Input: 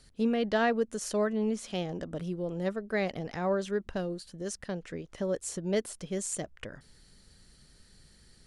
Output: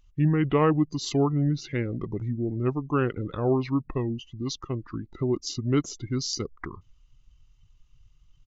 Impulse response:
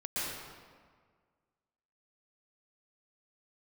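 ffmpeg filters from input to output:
-af "afftdn=noise_reduction=20:noise_floor=-48,asetrate=29433,aresample=44100,atempo=1.49831,volume=5.5dB"

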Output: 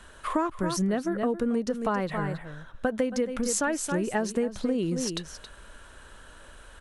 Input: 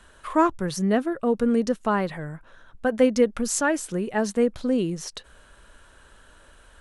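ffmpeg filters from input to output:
ffmpeg -i in.wav -af "aecho=1:1:272:0.266,acompressor=threshold=-26dB:ratio=12,volume=3dB" out.wav

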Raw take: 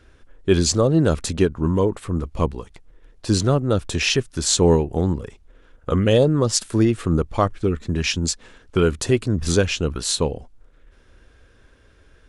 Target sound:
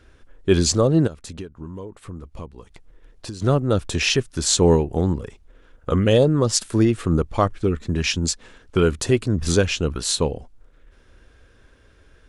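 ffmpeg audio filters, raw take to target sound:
ffmpeg -i in.wav -filter_complex "[0:a]asplit=3[link_01][link_02][link_03];[link_01]afade=type=out:start_time=1.06:duration=0.02[link_04];[link_02]acompressor=threshold=-32dB:ratio=8,afade=type=in:start_time=1.06:duration=0.02,afade=type=out:start_time=3.41:duration=0.02[link_05];[link_03]afade=type=in:start_time=3.41:duration=0.02[link_06];[link_04][link_05][link_06]amix=inputs=3:normalize=0" out.wav

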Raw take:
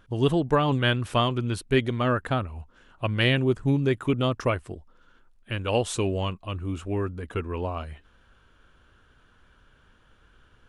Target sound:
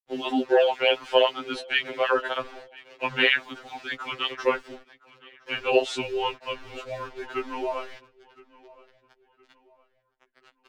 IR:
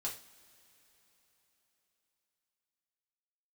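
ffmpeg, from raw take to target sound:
-filter_complex "[0:a]equalizer=frequency=270:width_type=o:width=0.97:gain=-5.5,bandreject=frequency=1200:width=7.3,afreqshift=-79,acrusher=bits=7:mix=0:aa=0.000001,acrossover=split=290 5300:gain=0.1 1 0.0631[link_01][link_02][link_03];[link_01][link_02][link_03]amix=inputs=3:normalize=0,asplit=2[link_04][link_05];[link_05]adelay=1016,lowpass=frequency=4200:poles=1,volume=-22dB,asplit=2[link_06][link_07];[link_07]adelay=1016,lowpass=frequency=4200:poles=1,volume=0.38,asplit=2[link_08][link_09];[link_09]adelay=1016,lowpass=frequency=4200:poles=1,volume=0.38[link_10];[link_04][link_06][link_08][link_10]amix=inputs=4:normalize=0,afftfilt=real='re*2.45*eq(mod(b,6),0)':imag='im*2.45*eq(mod(b,6),0)':win_size=2048:overlap=0.75,volume=7.5dB"

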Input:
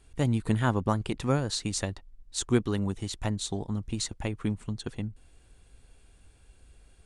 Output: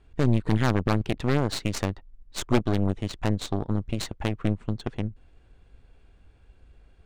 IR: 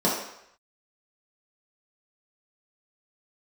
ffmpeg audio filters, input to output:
-af "aeval=exprs='0.316*(cos(1*acos(clip(val(0)/0.316,-1,1)))-cos(1*PI/2))+0.112*(cos(2*acos(clip(val(0)/0.316,-1,1)))-cos(2*PI/2))+0.0631*(cos(8*acos(clip(val(0)/0.316,-1,1)))-cos(8*PI/2))':channel_layout=same,adynamicsmooth=sensitivity=3.5:basefreq=3300,volume=2dB"

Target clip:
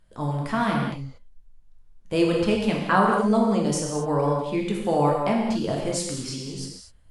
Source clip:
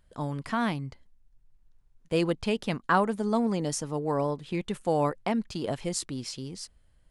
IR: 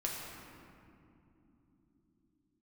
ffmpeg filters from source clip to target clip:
-filter_complex "[1:a]atrim=start_sample=2205,atrim=end_sample=6174,asetrate=24255,aresample=44100[link_01];[0:a][link_01]afir=irnorm=-1:irlink=0"

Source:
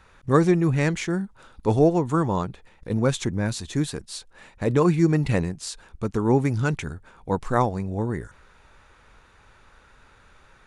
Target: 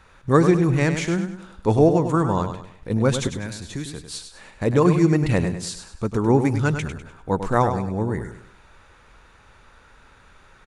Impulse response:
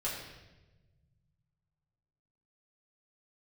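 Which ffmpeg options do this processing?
-filter_complex "[0:a]asettb=1/sr,asplit=3[link_01][link_02][link_03];[link_01]atrim=end=3.274[link_04];[link_02]atrim=start=3.27:end=4.07,asetpts=PTS-STARTPTS,afade=type=in:duration=0.004:curve=qsin,afade=type=out:start_time=0.796:duration=0.004:curve=qsin,acrossover=split=300|1600[link_05][link_06][link_07];[link_05]acompressor=threshold=-33dB:ratio=4[link_08];[link_06]acompressor=threshold=-41dB:ratio=4[link_09];[link_07]acompressor=threshold=-39dB:ratio=4[link_10];[link_08][link_09][link_10]amix=inputs=3:normalize=0[link_11];[link_03]atrim=start=4.066[link_12];[link_04][link_11]acrossfade=duration=0.004:curve1=hsin:curve2=qsin[link_13];[link_13][link_12]acrossfade=duration=0.004:curve1=qsin:curve2=hsin,aecho=1:1:100|200|300|400:0.376|0.139|0.0515|0.019,volume=2dB"

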